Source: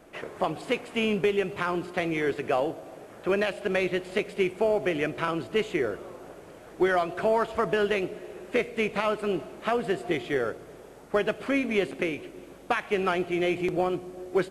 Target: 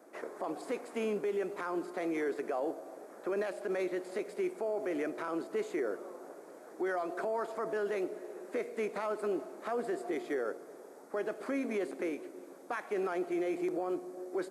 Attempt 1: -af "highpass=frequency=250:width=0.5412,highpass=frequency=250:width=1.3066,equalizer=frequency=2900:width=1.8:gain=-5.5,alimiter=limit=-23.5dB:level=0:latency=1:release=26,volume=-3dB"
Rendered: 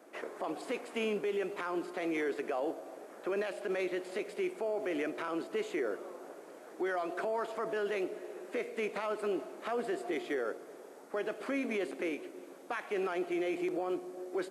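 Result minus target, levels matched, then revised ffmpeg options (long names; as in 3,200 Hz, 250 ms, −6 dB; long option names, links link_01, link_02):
4,000 Hz band +6.5 dB
-af "highpass=frequency=250:width=0.5412,highpass=frequency=250:width=1.3066,equalizer=frequency=2900:width=1.8:gain=-15,alimiter=limit=-23.5dB:level=0:latency=1:release=26,volume=-3dB"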